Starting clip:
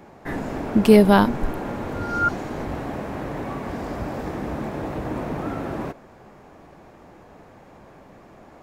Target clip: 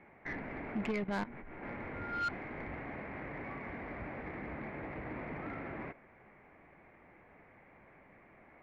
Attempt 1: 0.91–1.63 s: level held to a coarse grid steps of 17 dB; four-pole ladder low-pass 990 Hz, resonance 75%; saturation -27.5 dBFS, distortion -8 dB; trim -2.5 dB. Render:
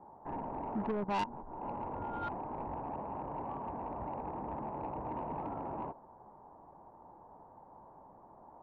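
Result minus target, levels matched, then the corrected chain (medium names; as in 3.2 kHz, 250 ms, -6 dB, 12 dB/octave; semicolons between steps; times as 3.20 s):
2 kHz band -11.5 dB
0.91–1.63 s: level held to a coarse grid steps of 17 dB; four-pole ladder low-pass 2.3 kHz, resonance 75%; saturation -27.5 dBFS, distortion -10 dB; trim -2.5 dB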